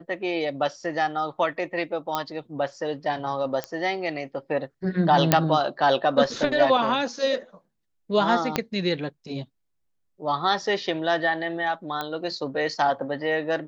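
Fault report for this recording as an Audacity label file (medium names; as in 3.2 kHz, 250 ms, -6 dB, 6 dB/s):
2.150000	2.150000	pop -12 dBFS
3.640000	3.640000	pop -14 dBFS
5.320000	5.320000	pop -1 dBFS
8.560000	8.560000	pop -7 dBFS
12.010000	12.010000	pop -15 dBFS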